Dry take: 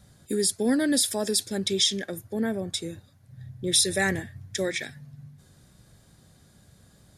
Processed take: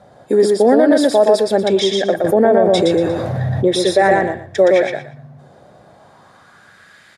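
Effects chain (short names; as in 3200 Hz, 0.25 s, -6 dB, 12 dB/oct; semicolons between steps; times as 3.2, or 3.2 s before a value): in parallel at -11.5 dB: soft clip -20 dBFS, distortion -14 dB; on the sum: band-pass sweep 670 Hz -> 1900 Hz, 5.78–6.96; on a send: feedback echo 0.118 s, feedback 20%, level -3 dB; on the sum: maximiser +24 dB; 2.24–3.68 fast leveller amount 70%; gain -2 dB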